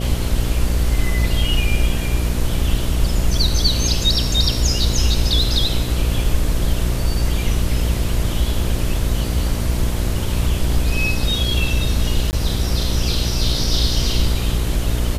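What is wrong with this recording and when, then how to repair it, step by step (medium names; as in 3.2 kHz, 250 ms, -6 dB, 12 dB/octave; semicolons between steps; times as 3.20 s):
buzz 60 Hz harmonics 11 -22 dBFS
5.42 s: dropout 2.3 ms
12.31–12.33 s: dropout 19 ms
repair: de-hum 60 Hz, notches 11; interpolate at 5.42 s, 2.3 ms; interpolate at 12.31 s, 19 ms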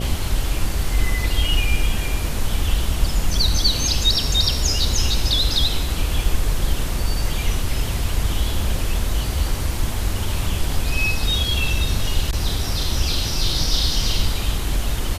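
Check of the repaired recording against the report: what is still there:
nothing left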